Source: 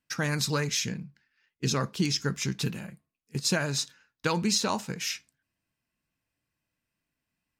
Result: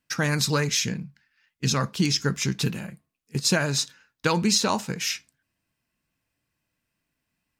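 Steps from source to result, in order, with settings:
0:01.05–0:02.02: parametric band 380 Hz −13.5 dB → −4 dB 0.72 octaves
level +4.5 dB

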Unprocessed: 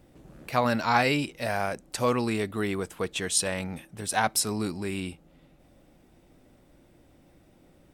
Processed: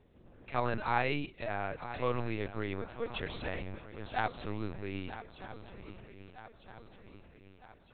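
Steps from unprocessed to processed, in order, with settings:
feedback echo with a long and a short gap by turns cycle 1,258 ms, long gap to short 3 to 1, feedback 52%, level −13 dB
linear-prediction vocoder at 8 kHz pitch kept
level −7.5 dB

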